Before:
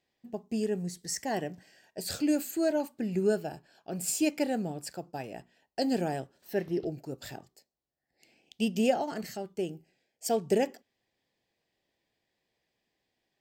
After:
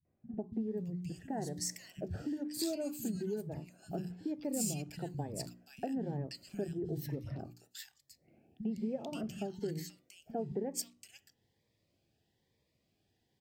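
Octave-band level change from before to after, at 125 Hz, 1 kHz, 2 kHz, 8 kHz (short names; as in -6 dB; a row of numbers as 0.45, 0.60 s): -0.5, -10.5, -13.5, -4.5 dB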